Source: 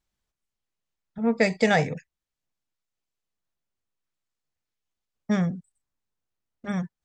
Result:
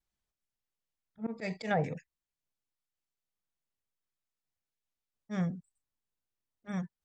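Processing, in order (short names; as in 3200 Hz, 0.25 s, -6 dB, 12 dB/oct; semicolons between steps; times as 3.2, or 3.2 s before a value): auto swell 0.114 s; 1.33–1.84 treble ducked by the level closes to 920 Hz, closed at -18 dBFS; vibrato 0.65 Hz 16 cents; gain -6.5 dB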